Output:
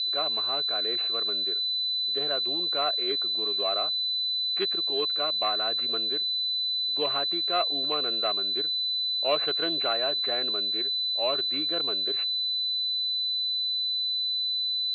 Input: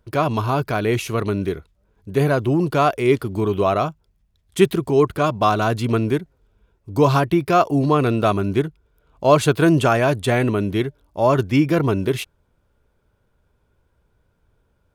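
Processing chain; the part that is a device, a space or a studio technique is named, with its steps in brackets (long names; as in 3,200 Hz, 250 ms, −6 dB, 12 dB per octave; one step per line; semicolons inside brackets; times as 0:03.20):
toy sound module (linearly interpolated sample-rate reduction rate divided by 8×; switching amplifier with a slow clock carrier 4,000 Hz; loudspeaker in its box 640–4,900 Hz, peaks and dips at 940 Hz −10 dB, 2,700 Hz +9 dB, 4,000 Hz +5 dB)
level −7 dB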